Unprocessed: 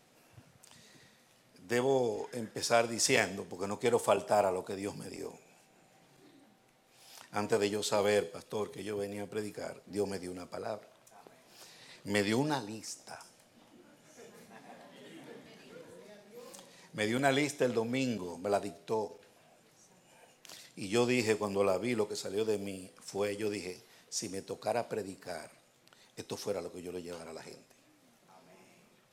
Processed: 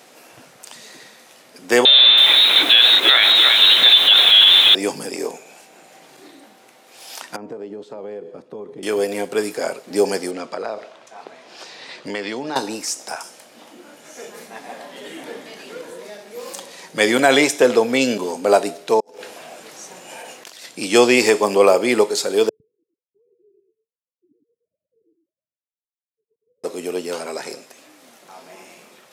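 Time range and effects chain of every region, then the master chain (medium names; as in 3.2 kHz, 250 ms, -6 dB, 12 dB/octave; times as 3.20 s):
1.85–4.75 s: jump at every zero crossing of -27.5 dBFS + frequency inversion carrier 4 kHz + bit-crushed delay 326 ms, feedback 35%, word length 7-bit, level -8.5 dB
7.36–8.83 s: compression, threshold -39 dBFS + band-pass filter 140 Hz, Q 0.61
10.31–12.56 s: low-pass 4.9 kHz + compression, threshold -39 dBFS
19.00–20.65 s: treble shelf 10 kHz -3 dB + compressor with a negative ratio -59 dBFS
22.49–26.64 s: formants replaced by sine waves + inverse Chebyshev low-pass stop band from 620 Hz, stop band 70 dB + delay 109 ms -5 dB
whole clip: high-pass 310 Hz 12 dB/octave; loudness maximiser +19 dB; trim -1 dB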